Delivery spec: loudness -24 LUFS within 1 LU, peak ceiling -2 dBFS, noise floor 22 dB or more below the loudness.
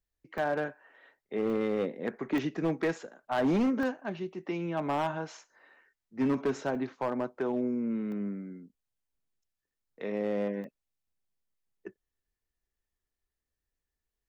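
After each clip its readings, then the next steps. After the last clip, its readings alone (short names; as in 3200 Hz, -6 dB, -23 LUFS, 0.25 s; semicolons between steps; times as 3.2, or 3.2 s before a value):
clipped 1.4%; flat tops at -23.0 dBFS; dropouts 7; longest dropout 1.1 ms; loudness -32.5 LUFS; peak -23.0 dBFS; loudness target -24.0 LUFS
-> clip repair -23 dBFS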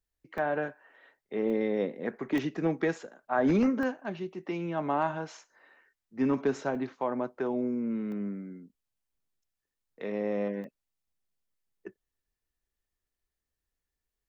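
clipped 0.0%; dropouts 7; longest dropout 1.1 ms
-> interpolate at 0.38/1.5/2.38/3.83/6.75/8.12/10.64, 1.1 ms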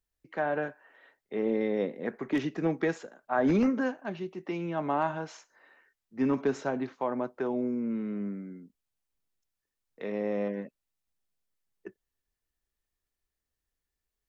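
dropouts 0; loudness -31.5 LUFS; peak -14.5 dBFS; loudness target -24.0 LUFS
-> gain +7.5 dB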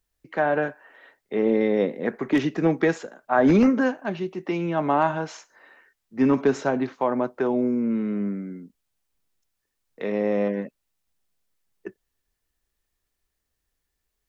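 loudness -24.0 LUFS; peak -7.0 dBFS; noise floor -80 dBFS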